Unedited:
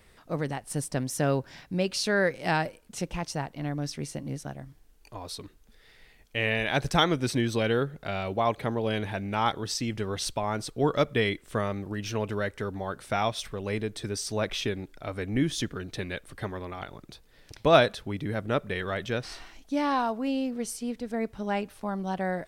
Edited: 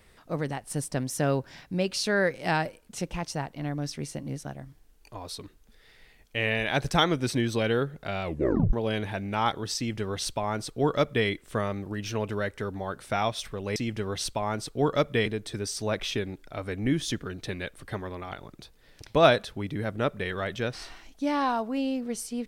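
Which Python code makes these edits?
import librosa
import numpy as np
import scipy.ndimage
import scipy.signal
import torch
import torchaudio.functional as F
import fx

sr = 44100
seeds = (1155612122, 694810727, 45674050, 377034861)

y = fx.edit(x, sr, fx.tape_stop(start_s=8.24, length_s=0.49),
    fx.duplicate(start_s=9.77, length_s=1.5, to_s=13.76), tone=tone)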